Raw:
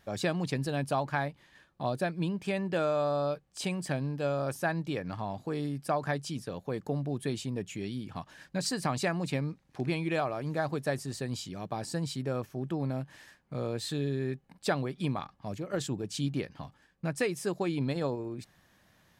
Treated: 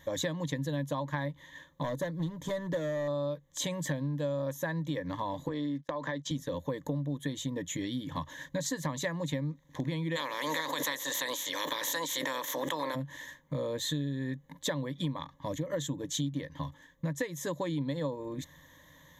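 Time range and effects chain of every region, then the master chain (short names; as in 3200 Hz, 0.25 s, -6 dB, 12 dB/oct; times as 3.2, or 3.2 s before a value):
1.82–3.08 bell 2500 Hz -13.5 dB 0.51 oct + hard clip -28 dBFS
5.48–6.31 three-band isolator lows -17 dB, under 200 Hz, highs -17 dB, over 6300 Hz + compressor 4:1, threshold -35 dBFS + gate -49 dBFS, range -27 dB
10.15–12.94 spectral limiter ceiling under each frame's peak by 27 dB + HPF 320 Hz + backwards sustainer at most 36 dB/s
whole clip: ripple EQ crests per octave 1.1, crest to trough 16 dB; compressor, threshold -34 dBFS; gain +3.5 dB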